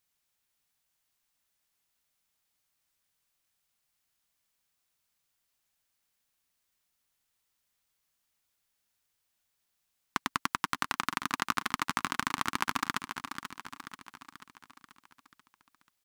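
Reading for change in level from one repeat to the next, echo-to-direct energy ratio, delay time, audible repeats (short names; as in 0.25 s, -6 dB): -5.5 dB, -7.5 dB, 0.486 s, 5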